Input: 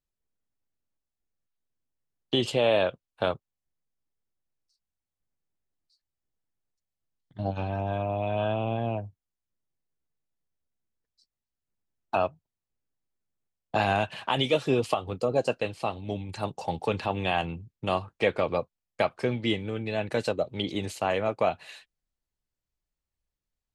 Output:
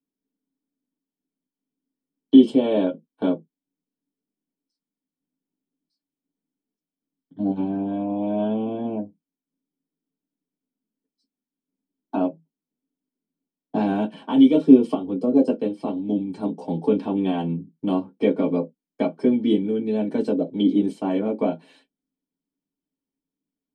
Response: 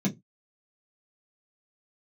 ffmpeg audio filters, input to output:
-filter_complex "[0:a]asettb=1/sr,asplit=3[a][b][c];[a]atrim=end=19.504[d];[b]atrim=start=19.5:end=20.07,asetpts=PTS-STARTPTS,afade=t=in:d=0.004:c=qsin,afade=t=out:st=0.566:d=0.004:c=qsin,highshelf=f=8k:g=9[e];[c]atrim=start=20.066[f];[d][e]acrossfade=d=0.004:c1=hsin:c2=qsin[g];[g][f]acrossfade=d=0.004:c1=qsin:c2=hsin[h];[1:a]atrim=start_sample=2205,asetrate=61740,aresample=44100[i];[h][i]afir=irnorm=-1:irlink=0,volume=-8.5dB"

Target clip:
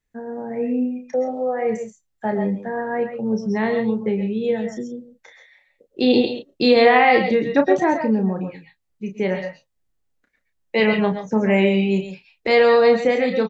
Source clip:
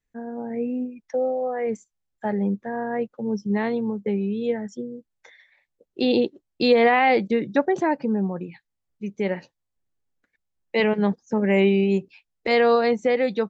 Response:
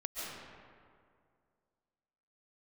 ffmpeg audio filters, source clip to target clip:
-filter_complex "[0:a]asplit=2[a][b];[b]adelay=32,volume=-7dB[c];[a][c]amix=inputs=2:normalize=0[d];[1:a]atrim=start_sample=2205,atrim=end_sample=6174[e];[d][e]afir=irnorm=-1:irlink=0,volume=6.5dB"

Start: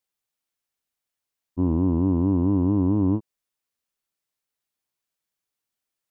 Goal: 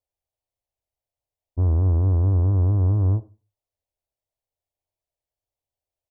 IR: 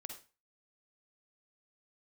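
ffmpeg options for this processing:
-filter_complex "[0:a]firequalizer=gain_entry='entry(100,0);entry(170,-21);entry(620,-4);entry(1400,-29);entry(2000,-21)':delay=0.05:min_phase=1,asoftclip=type=tanh:threshold=-24.5dB,asplit=2[a][b];[1:a]atrim=start_sample=2205[c];[b][c]afir=irnorm=-1:irlink=0,volume=-6dB[d];[a][d]amix=inputs=2:normalize=0,volume=9dB"

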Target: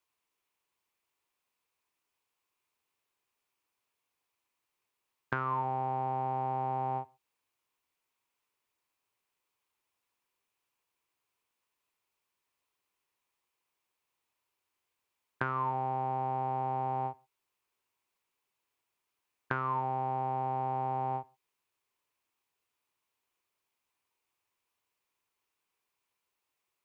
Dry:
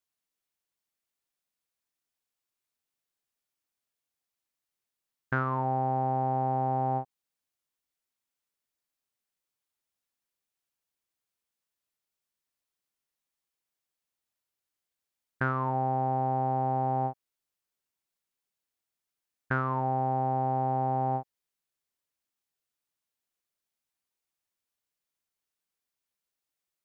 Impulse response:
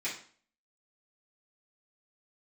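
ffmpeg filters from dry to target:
-filter_complex "[0:a]equalizer=f=100:t=o:w=0.67:g=6,equalizer=f=400:t=o:w=0.67:g=8,equalizer=f=1k:t=o:w=0.67:g=12,equalizer=f=2.5k:t=o:w=0.67:g=8,asplit=2[a][b];[1:a]atrim=start_sample=2205,atrim=end_sample=6174[c];[b][c]afir=irnorm=-1:irlink=0,volume=-21.5dB[d];[a][d]amix=inputs=2:normalize=0,acrossover=split=100|1900[e][f][g];[e]acompressor=threshold=-49dB:ratio=4[h];[f]acompressor=threshold=-34dB:ratio=4[i];[g]acompressor=threshold=-40dB:ratio=4[j];[h][i][j]amix=inputs=3:normalize=0"

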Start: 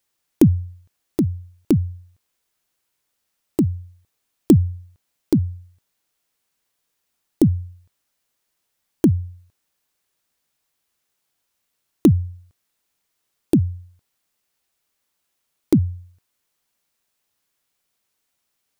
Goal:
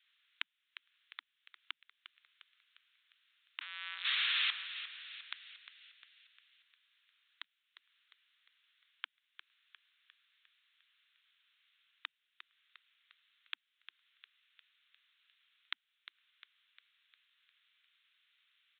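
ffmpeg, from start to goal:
-filter_complex "[0:a]asettb=1/sr,asplit=3[a][b][c];[a]atrim=end=3.614[d];[b]atrim=start=3.61:end=4.65,asetpts=PTS-STARTPTS,afade=t=in:d=0.004:c=qsin,afade=t=out:st=1.036:d=0.004:c=qsin,aeval=exprs='val(0)+0.5*0.106*sgn(val(0))':c=same[e];[c]atrim=start=4.646[f];[d][e]acrossfade=d=0.004:c1=hsin:c2=qsin[g];[g][f]acrossfade=d=0.004:c1=qsin:c2=hsin,acompressor=threshold=-39dB:ratio=2,asuperpass=centerf=2900:order=8:qfactor=0.6,asplit=7[h][i][j][k][l][m][n];[i]adelay=353,afreqshift=52,volume=-12dB[o];[j]adelay=706,afreqshift=104,volume=-17.4dB[p];[k]adelay=1059,afreqshift=156,volume=-22.7dB[q];[l]adelay=1412,afreqshift=208,volume=-28.1dB[r];[m]adelay=1765,afreqshift=260,volume=-33.4dB[s];[n]adelay=2118,afreqshift=312,volume=-38.8dB[t];[h][o][p][q][r][s][t]amix=inputs=7:normalize=0,aresample=8000,aresample=44100,crystalizer=i=7:c=0"

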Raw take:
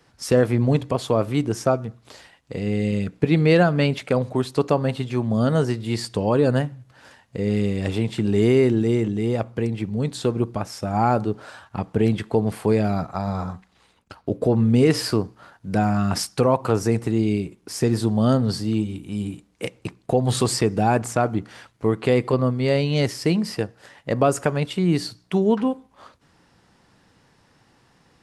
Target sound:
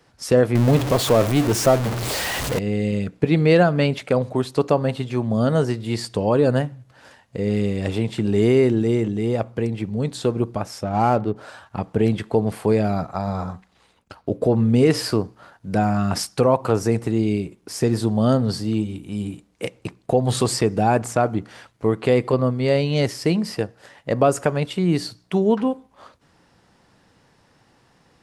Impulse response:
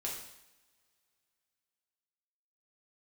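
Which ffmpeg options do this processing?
-filter_complex "[0:a]asettb=1/sr,asplit=3[a][b][c];[a]atrim=end=0.554[d];[b]atrim=start=0.55:end=2.59,asetpts=PTS-STARTPTS,afade=t=in:d=0.004:c=qsin,afade=t=out:st=2.036:d=0.004:c=qsin,aeval=exprs='val(0)+0.5*0.1*sgn(val(0))':c=same[e];[c]atrim=start=2.586[f];[d][e]acrossfade=d=0.004:c1=hsin:c2=qsin[g];[g][f]acrossfade=d=0.004:c1=qsin:c2=hsin,asplit=3[h][i][j];[h]afade=t=out:st=10.82:d=0.02[k];[i]adynamicsmooth=sensitivity=5.5:basefreq=1.6k,afade=t=in:st=10.82:d=0.02,afade=t=out:st=11.35:d=0.02[l];[j]afade=t=in:st=11.35:d=0.02[m];[k][l][m]amix=inputs=3:normalize=0,equalizer=f=590:w=1.5:g=2.5"

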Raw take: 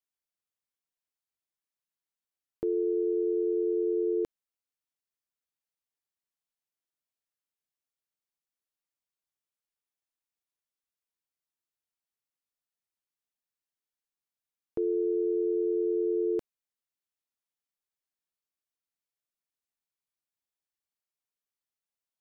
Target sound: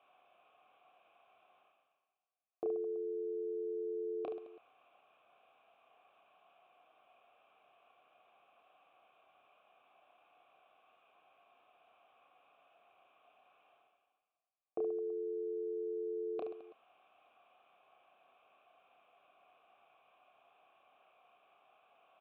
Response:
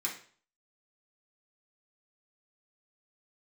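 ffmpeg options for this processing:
-filter_complex "[0:a]aresample=8000,aresample=44100,areverse,acompressor=mode=upward:threshold=-42dB:ratio=2.5,areverse,asplit=3[a][b][c];[a]bandpass=f=730:t=q:w=8,volume=0dB[d];[b]bandpass=f=1.09k:t=q:w=8,volume=-6dB[e];[c]bandpass=f=2.44k:t=q:w=8,volume=-9dB[f];[d][e][f]amix=inputs=3:normalize=0,aemphasis=mode=reproduction:type=75kf,asplit=2[g][h];[h]aecho=0:1:30|72|130.8|213.1|328.4:0.631|0.398|0.251|0.158|0.1[i];[g][i]amix=inputs=2:normalize=0,volume=10.5dB"

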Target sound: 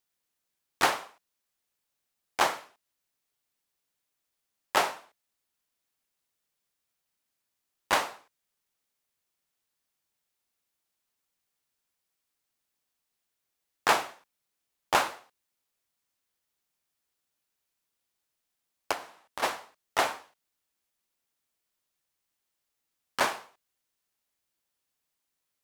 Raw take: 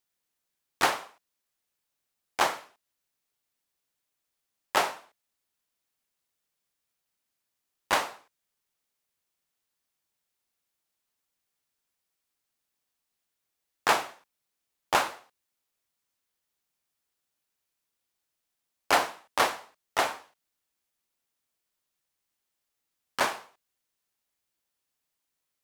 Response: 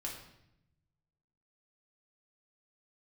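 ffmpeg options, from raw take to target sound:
-filter_complex "[0:a]asplit=3[a][b][c];[a]afade=t=out:st=18.91:d=0.02[d];[b]acompressor=threshold=-39dB:ratio=4,afade=t=in:st=18.91:d=0.02,afade=t=out:st=19.42:d=0.02[e];[c]afade=t=in:st=19.42:d=0.02[f];[d][e][f]amix=inputs=3:normalize=0"

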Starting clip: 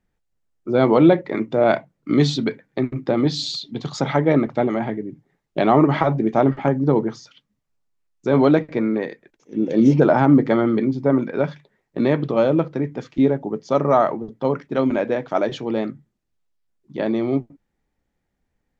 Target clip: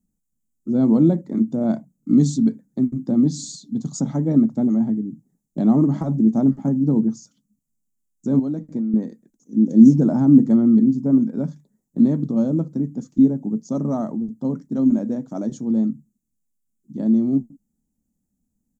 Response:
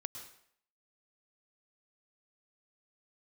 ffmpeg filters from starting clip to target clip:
-filter_complex "[0:a]firequalizer=gain_entry='entry(120,0);entry(220,13);entry(380,-7);entry(2400,-25);entry(6900,11)':delay=0.05:min_phase=1,asettb=1/sr,asplit=3[a][b][c];[a]atrim=end=8.394[d];[b]atrim=start=8.39:end=8.94,asetpts=PTS-STARTPTS,afade=t=in:d=0.004:c=qsin,afade=t=out:st=0.546:d=0.004:c=qsin,acompressor=threshold=-19dB:ratio=5[e];[c]atrim=start=8.936[f];[d][e]acrossfade=d=0.004:c1=hsin:c2=qsin[g];[g][f]acrossfade=d=0.004:c1=qsin:c2=hsin,volume=-3.5dB"

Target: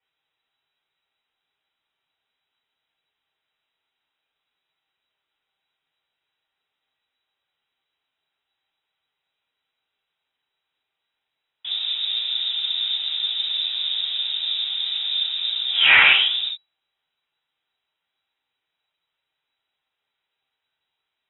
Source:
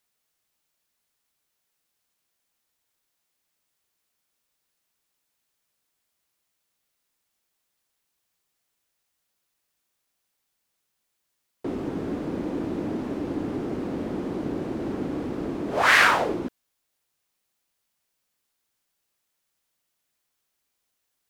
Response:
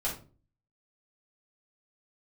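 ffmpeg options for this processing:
-filter_complex "[1:a]atrim=start_sample=2205,afade=t=out:st=0.13:d=0.01,atrim=end_sample=6174[a];[0:a][a]afir=irnorm=-1:irlink=0,lowpass=f=3.3k:t=q:w=0.5098,lowpass=f=3.3k:t=q:w=0.6013,lowpass=f=3.3k:t=q:w=0.9,lowpass=f=3.3k:t=q:w=2.563,afreqshift=-3900,volume=-1dB"

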